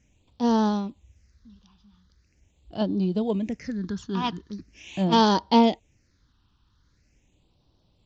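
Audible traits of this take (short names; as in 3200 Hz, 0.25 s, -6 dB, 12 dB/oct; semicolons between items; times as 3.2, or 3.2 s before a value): phasing stages 6, 0.42 Hz, lowest notch 560–2000 Hz; SBC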